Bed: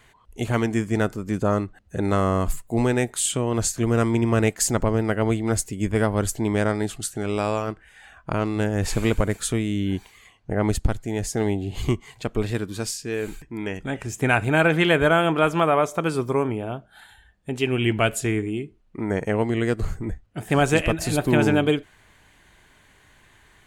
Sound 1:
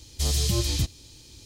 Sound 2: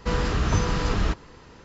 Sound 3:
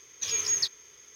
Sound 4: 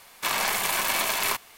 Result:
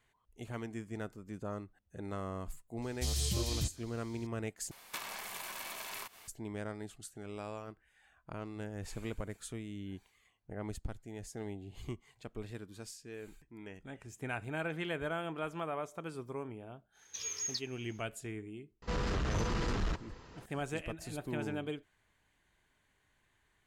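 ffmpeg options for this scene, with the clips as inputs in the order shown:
-filter_complex "[0:a]volume=0.112[s0];[4:a]acompressor=threshold=0.0141:ratio=16:attack=34:release=220:knee=1:detection=peak[s1];[2:a]asoftclip=type=tanh:threshold=0.0668[s2];[s0]asplit=2[s3][s4];[s3]atrim=end=4.714[s5];[s1]atrim=end=1.57,asetpts=PTS-STARTPTS,volume=0.531[s6];[s4]atrim=start=6.276[s7];[1:a]atrim=end=1.45,asetpts=PTS-STARTPTS,volume=0.335,afade=t=in:d=0.004:c=hsin,afade=t=out:st=1.446:d=0.004:c=hsin,adelay=2820[s8];[3:a]atrim=end=1.15,asetpts=PTS-STARTPTS,volume=0.282,afade=t=in:d=0.1,afade=t=out:st=1.05:d=0.1,adelay=16920[s9];[s2]atrim=end=1.64,asetpts=PTS-STARTPTS,volume=0.501,afade=t=in:d=0.004:c=hsin,afade=t=out:st=1.636:d=0.004:c=hsin,adelay=18820[s10];[s5][s6]acrossfade=d=0.004:c1=hsin:c2=hsin[s11];[s11][s7]acrossfade=d=0.004:c1=hsin:c2=hsin[s12];[s12][s8][s9][s10]amix=inputs=4:normalize=0"

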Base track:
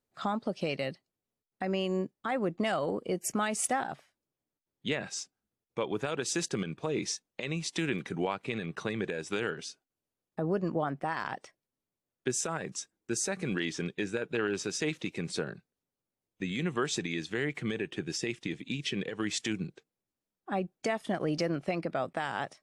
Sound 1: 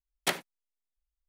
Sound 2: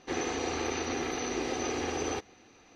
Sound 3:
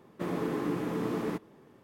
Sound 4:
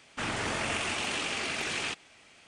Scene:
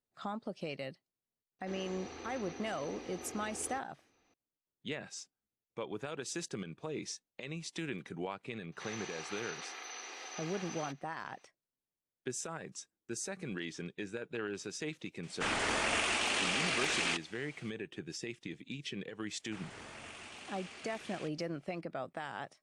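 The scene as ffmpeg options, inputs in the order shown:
-filter_complex "[2:a]asplit=2[s0][s1];[4:a]asplit=2[s2][s3];[0:a]volume=0.398[s4];[s1]highpass=1000[s5];[s2]equalizer=f=120:t=o:w=1.4:g=-9.5[s6];[s0]atrim=end=2.75,asetpts=PTS-STARTPTS,volume=0.188,afade=t=in:d=0.004:c=hsin,afade=t=out:st=2.746:d=0.004:c=hsin,adelay=1590[s7];[s5]atrim=end=2.75,asetpts=PTS-STARTPTS,volume=0.422,afade=t=in:d=0.004:c=hsin,afade=t=out:st=2.746:d=0.004:c=hsin,adelay=8720[s8];[s6]atrim=end=2.47,asetpts=PTS-STARTPTS,afade=t=in:d=0.004:c=hsin,afade=t=out:st=2.466:d=0.004:c=hsin,adelay=15230[s9];[s3]atrim=end=2.47,asetpts=PTS-STARTPTS,volume=0.133,afade=t=in:d=0.004:c=hsin,afade=t=out:st=2.466:d=0.004:c=hsin,adelay=19340[s10];[s4][s7][s8][s9][s10]amix=inputs=5:normalize=0"

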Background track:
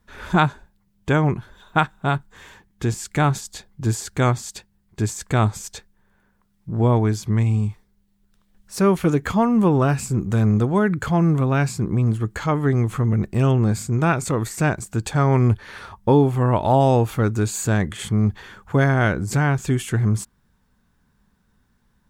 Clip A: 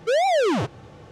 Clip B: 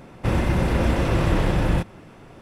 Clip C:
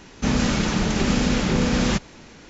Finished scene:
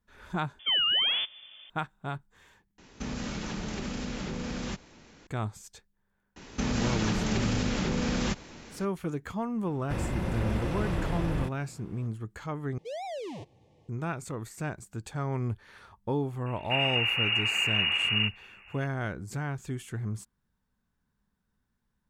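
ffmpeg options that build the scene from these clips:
-filter_complex "[1:a]asplit=2[s0][s1];[3:a]asplit=2[s2][s3];[2:a]asplit=2[s4][s5];[0:a]volume=0.188[s6];[s0]lowpass=f=3100:t=q:w=0.5098,lowpass=f=3100:t=q:w=0.6013,lowpass=f=3100:t=q:w=0.9,lowpass=f=3100:t=q:w=2.563,afreqshift=-3600[s7];[s2]acompressor=threshold=0.0891:ratio=6:attack=3.2:release=140:knee=1:detection=peak[s8];[s3]acompressor=threshold=0.0794:ratio=6:attack=3.2:release=140:knee=1:detection=peak[s9];[s1]asuperstop=centerf=1400:order=4:qfactor=1.4[s10];[s5]lowpass=f=2500:t=q:w=0.5098,lowpass=f=2500:t=q:w=0.6013,lowpass=f=2500:t=q:w=0.9,lowpass=f=2500:t=q:w=2.563,afreqshift=-2900[s11];[s6]asplit=4[s12][s13][s14][s15];[s12]atrim=end=0.594[s16];[s7]atrim=end=1.11,asetpts=PTS-STARTPTS,volume=0.501[s17];[s13]atrim=start=1.696:end=2.784[s18];[s8]atrim=end=2.49,asetpts=PTS-STARTPTS,volume=0.335[s19];[s14]atrim=start=5.266:end=12.784[s20];[s10]atrim=end=1.11,asetpts=PTS-STARTPTS,volume=0.141[s21];[s15]atrim=start=13.886[s22];[s9]atrim=end=2.49,asetpts=PTS-STARTPTS,volume=0.75,afade=t=in:d=0.004:c=hsin,afade=t=out:st=2.486:d=0.004:c=hsin,adelay=6360[s23];[s4]atrim=end=2.41,asetpts=PTS-STARTPTS,volume=0.299,afade=t=in:d=0.004:c=hsin,afade=t=out:st=2.406:d=0.004:c=hsin,adelay=9660[s24];[s11]atrim=end=2.41,asetpts=PTS-STARTPTS,volume=0.398,afade=t=in:d=0.004:c=hsin,afade=t=out:st=2.406:d=0.004:c=hsin,adelay=16460[s25];[s16][s17]acrossfade=d=0.004:c1=hsin:c2=hsin[s26];[s26][s18]acrossfade=d=0.004:c1=hsin:c2=hsin[s27];[s27][s19]acrossfade=d=0.004:c1=hsin:c2=hsin[s28];[s28][s20]acrossfade=d=0.004:c1=hsin:c2=hsin[s29];[s29][s21]acrossfade=d=0.004:c1=hsin:c2=hsin[s30];[s30][s22]acrossfade=d=0.004:c1=hsin:c2=hsin[s31];[s31][s23][s24][s25]amix=inputs=4:normalize=0"

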